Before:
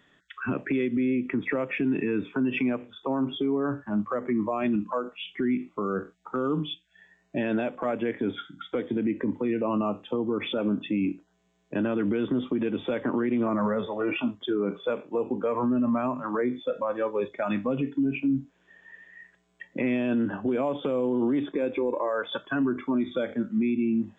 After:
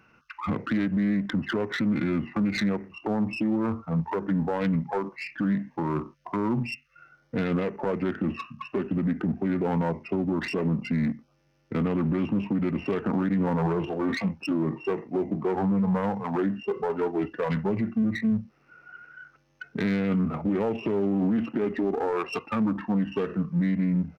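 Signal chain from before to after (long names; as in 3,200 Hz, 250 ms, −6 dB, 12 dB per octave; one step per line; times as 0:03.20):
phase distortion by the signal itself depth 0.11 ms
pitch shifter −4 semitones
in parallel at −8 dB: hard clipping −35 dBFS, distortion −4 dB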